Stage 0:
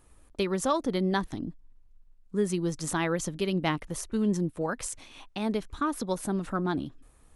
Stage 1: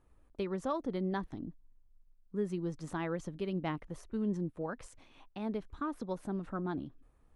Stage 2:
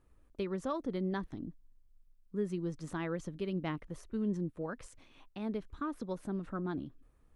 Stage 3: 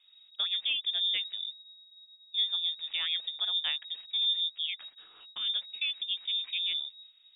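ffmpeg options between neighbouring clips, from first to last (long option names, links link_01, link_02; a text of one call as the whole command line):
ffmpeg -i in.wav -af "lowpass=frequency=1500:poles=1,volume=-7dB" out.wav
ffmpeg -i in.wav -af "equalizer=frequency=800:width_type=o:width=0.68:gain=-4.5" out.wav
ffmpeg -i in.wav -af "lowpass=frequency=3200:width_type=q:width=0.5098,lowpass=frequency=3200:width_type=q:width=0.6013,lowpass=frequency=3200:width_type=q:width=0.9,lowpass=frequency=3200:width_type=q:width=2.563,afreqshift=-3800,volume=4.5dB" out.wav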